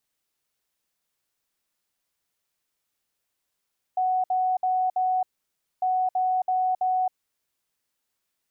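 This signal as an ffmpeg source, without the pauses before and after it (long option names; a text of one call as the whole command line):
ffmpeg -f lavfi -i "aevalsrc='0.0944*sin(2*PI*742*t)*clip(min(mod(mod(t,1.85),0.33),0.27-mod(mod(t,1.85),0.33))/0.005,0,1)*lt(mod(t,1.85),1.32)':duration=3.7:sample_rate=44100" out.wav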